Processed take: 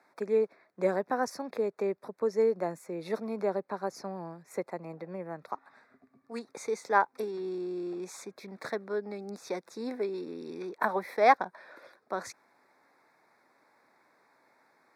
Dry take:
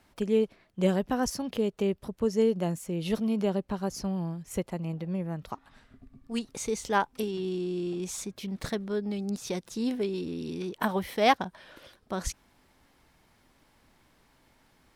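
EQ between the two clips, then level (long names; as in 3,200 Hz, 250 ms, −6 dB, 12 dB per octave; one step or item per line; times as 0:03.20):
high-pass filter 120 Hz 24 dB per octave
Butterworth band-reject 3,000 Hz, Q 2
three-way crossover with the lows and the highs turned down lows −18 dB, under 350 Hz, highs −13 dB, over 3,400 Hz
+2.0 dB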